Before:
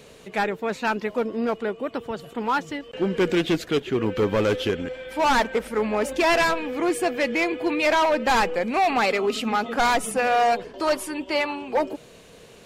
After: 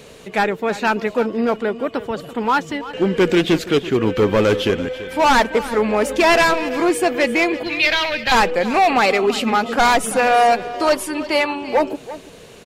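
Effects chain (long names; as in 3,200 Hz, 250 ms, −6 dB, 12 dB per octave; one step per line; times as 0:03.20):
0:07.63–0:08.32: octave-band graphic EQ 125/250/500/1,000/2,000/4,000/8,000 Hz +7/−11/−8/−10/+3/+8/−10 dB
on a send: single-tap delay 335 ms −15.5 dB
on the sum: level +6 dB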